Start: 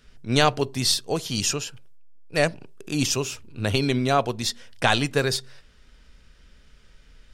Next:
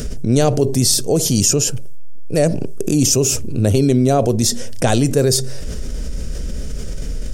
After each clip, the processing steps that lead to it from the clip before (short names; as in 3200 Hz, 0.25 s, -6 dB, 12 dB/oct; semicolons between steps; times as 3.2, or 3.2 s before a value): band shelf 1900 Hz -15 dB 2.7 oct; fast leveller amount 70%; gain +6.5 dB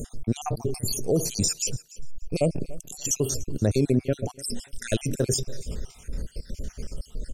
random spectral dropouts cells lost 62%; feedback echo 0.292 s, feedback 19%, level -20 dB; gain -6.5 dB